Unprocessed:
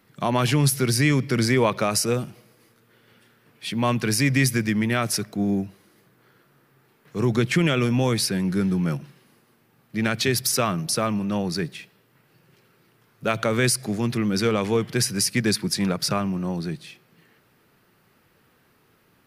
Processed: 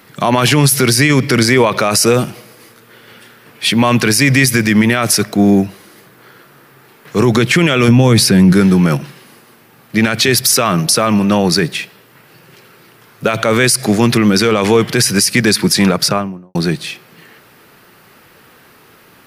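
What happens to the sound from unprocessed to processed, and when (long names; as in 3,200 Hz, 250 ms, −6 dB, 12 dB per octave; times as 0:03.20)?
0:07.88–0:08.53: parametric band 120 Hz +10 dB 2.8 octaves
0:15.81–0:16.55: fade out and dull
whole clip: low-shelf EQ 270 Hz −7.5 dB; boost into a limiter +19 dB; level −1 dB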